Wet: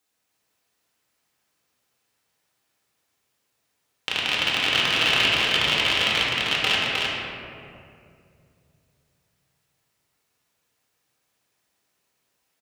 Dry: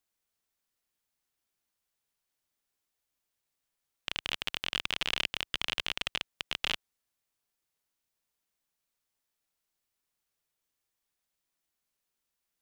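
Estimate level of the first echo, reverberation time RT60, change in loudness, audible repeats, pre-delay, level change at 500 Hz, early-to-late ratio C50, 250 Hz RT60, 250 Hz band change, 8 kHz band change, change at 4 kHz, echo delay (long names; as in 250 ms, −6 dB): −3.5 dB, 2.5 s, +12.5 dB, 1, 4 ms, +16.0 dB, −3.5 dB, 3.2 s, +15.5 dB, +11.0 dB, +12.5 dB, 310 ms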